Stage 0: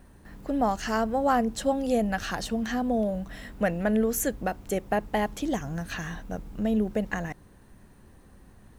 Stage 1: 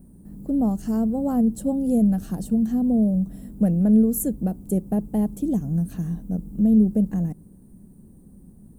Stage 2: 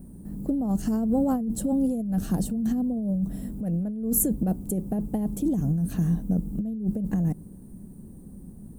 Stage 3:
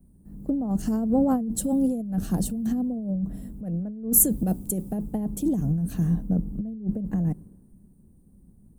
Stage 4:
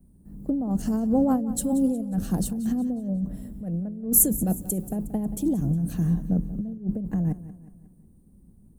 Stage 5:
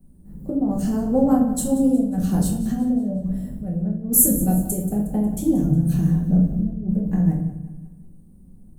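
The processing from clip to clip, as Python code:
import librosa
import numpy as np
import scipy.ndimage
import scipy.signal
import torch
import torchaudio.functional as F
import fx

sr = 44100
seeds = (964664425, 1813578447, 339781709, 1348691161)

y1 = fx.curve_eq(x, sr, hz=(110.0, 180.0, 1900.0, 3800.0, 6200.0, 8900.0), db=(0, 11, -24, -18, -13, 2))
y1 = y1 * 10.0 ** (1.5 / 20.0)
y2 = fx.over_compress(y1, sr, threshold_db=-25.0, ratio=-1.0)
y3 = fx.band_widen(y2, sr, depth_pct=70)
y4 = fx.echo_feedback(y3, sr, ms=181, feedback_pct=46, wet_db=-16)
y5 = fx.room_shoebox(y4, sr, seeds[0], volume_m3=120.0, walls='mixed', distance_m=1.1)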